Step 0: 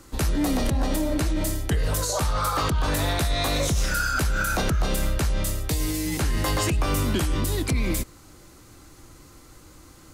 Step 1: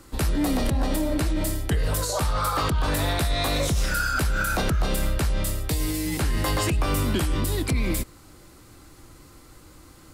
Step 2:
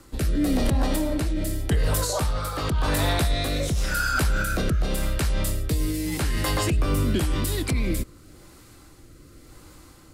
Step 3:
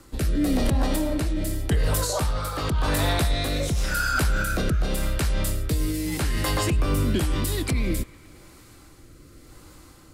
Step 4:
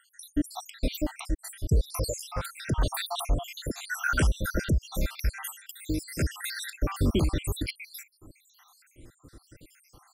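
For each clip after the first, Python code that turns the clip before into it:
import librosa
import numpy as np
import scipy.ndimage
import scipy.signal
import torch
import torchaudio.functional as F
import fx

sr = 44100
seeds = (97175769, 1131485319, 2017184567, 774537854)

y1 = fx.peak_eq(x, sr, hz=6300.0, db=-5.0, octaves=0.29)
y2 = fx.rotary(y1, sr, hz=0.9)
y2 = y2 * 10.0 ** (2.0 / 20.0)
y3 = fx.echo_wet_bandpass(y2, sr, ms=112, feedback_pct=79, hz=1500.0, wet_db=-20)
y4 = fx.spec_dropout(y3, sr, seeds[0], share_pct=75)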